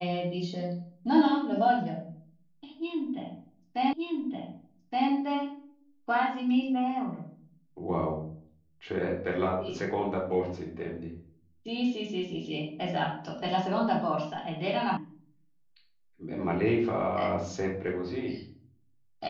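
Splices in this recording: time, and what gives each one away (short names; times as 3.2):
3.93 repeat of the last 1.17 s
14.97 sound cut off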